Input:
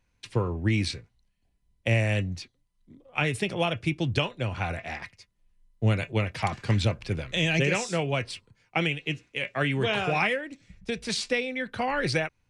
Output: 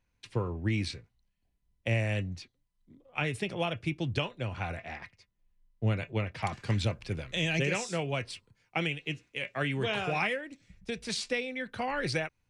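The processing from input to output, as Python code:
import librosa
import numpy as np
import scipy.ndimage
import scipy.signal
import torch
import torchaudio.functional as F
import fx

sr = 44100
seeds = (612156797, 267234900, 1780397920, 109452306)

y = fx.high_shelf(x, sr, hz=6200.0, db=fx.steps((0.0, -3.5), (4.82, -11.5), (6.42, 2.0)))
y = F.gain(torch.from_numpy(y), -5.0).numpy()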